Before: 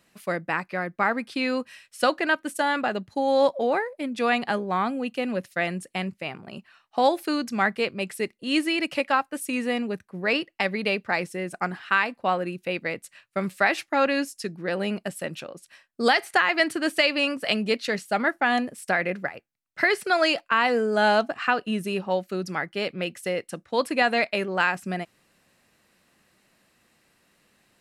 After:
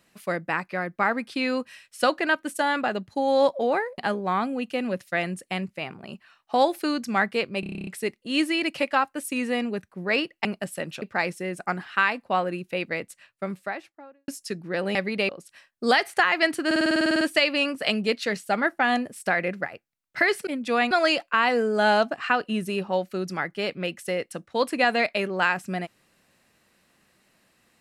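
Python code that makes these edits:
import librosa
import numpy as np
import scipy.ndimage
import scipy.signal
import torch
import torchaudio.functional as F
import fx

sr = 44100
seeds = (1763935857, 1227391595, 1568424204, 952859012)

y = fx.studio_fade_out(x, sr, start_s=12.9, length_s=1.32)
y = fx.edit(y, sr, fx.move(start_s=3.98, length_s=0.44, to_s=20.09),
    fx.stutter(start_s=8.04, slice_s=0.03, count=10),
    fx.swap(start_s=10.62, length_s=0.34, other_s=14.89, other_length_s=0.57),
    fx.stutter(start_s=16.83, slice_s=0.05, count=12), tone=tone)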